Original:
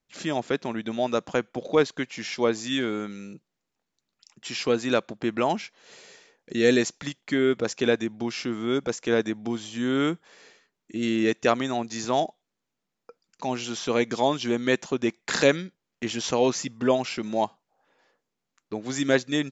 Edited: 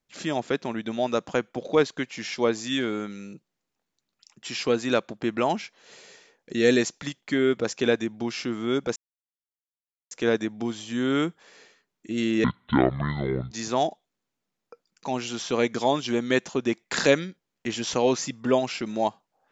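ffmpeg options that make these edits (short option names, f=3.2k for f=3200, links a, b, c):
-filter_complex "[0:a]asplit=4[a][b][c][d];[a]atrim=end=8.96,asetpts=PTS-STARTPTS,afade=t=out:st=8.956:d=0.004:c=hsin,apad=pad_dur=1.15[e];[b]atrim=start=8.96:end=11.294,asetpts=PTS-STARTPTS,afade=t=in:d=0.004:c=hsin[f];[c]atrim=start=11.29:end=11.88,asetpts=PTS-STARTPTS,asetrate=24255,aresample=44100,atrim=end_sample=47307,asetpts=PTS-STARTPTS[g];[d]atrim=start=11.876[h];[e][f]concat=n=2:v=0:a=1[i];[i][g]acrossfade=d=0.004:c1=hsin:c2=hsin[j];[j][h]acrossfade=d=0.004:c1=hsin:c2=hsin"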